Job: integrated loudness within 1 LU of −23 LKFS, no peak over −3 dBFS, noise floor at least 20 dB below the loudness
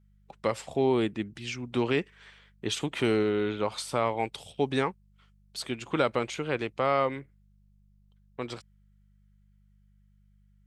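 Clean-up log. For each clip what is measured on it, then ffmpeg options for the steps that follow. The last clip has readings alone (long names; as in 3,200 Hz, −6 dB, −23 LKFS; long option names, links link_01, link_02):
mains hum 50 Hz; hum harmonics up to 200 Hz; level of the hum −58 dBFS; integrated loudness −30.0 LKFS; sample peak −11.0 dBFS; target loudness −23.0 LKFS
→ -af "bandreject=frequency=50:width_type=h:width=4,bandreject=frequency=100:width_type=h:width=4,bandreject=frequency=150:width_type=h:width=4,bandreject=frequency=200:width_type=h:width=4"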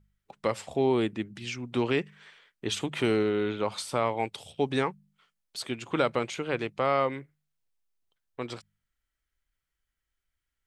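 mains hum none found; integrated loudness −30.0 LKFS; sample peak −11.0 dBFS; target loudness −23.0 LKFS
→ -af "volume=7dB"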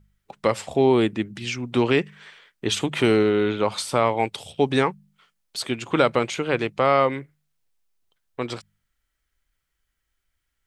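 integrated loudness −23.0 LKFS; sample peak −4.0 dBFS; background noise floor −78 dBFS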